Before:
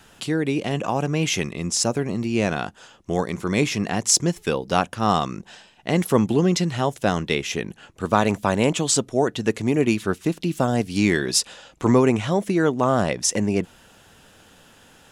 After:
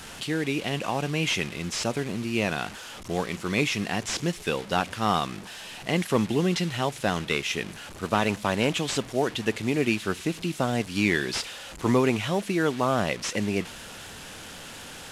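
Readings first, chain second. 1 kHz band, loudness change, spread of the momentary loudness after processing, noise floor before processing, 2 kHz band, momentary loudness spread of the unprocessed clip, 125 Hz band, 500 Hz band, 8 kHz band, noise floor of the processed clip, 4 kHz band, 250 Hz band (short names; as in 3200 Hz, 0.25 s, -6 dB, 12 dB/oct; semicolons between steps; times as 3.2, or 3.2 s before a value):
-4.0 dB, -5.0 dB, 13 LU, -53 dBFS, -0.5 dB, 8 LU, -5.5 dB, -5.0 dB, -10.5 dB, -42 dBFS, -2.0 dB, -5.5 dB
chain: delta modulation 64 kbps, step -31 dBFS; dynamic EQ 2800 Hz, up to +7 dB, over -41 dBFS, Q 0.75; gain -5.5 dB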